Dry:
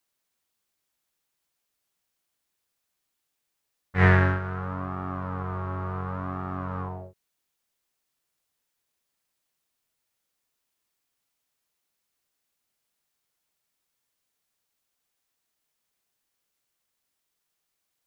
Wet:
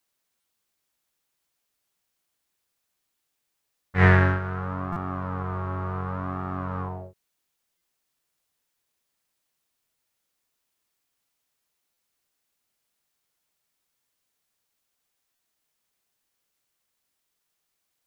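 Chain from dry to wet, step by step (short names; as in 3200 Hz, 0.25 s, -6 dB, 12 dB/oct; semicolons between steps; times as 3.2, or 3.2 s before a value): stuck buffer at 0.4/4.92/7.77/11.93/15.35, samples 256, times 6; gain +1.5 dB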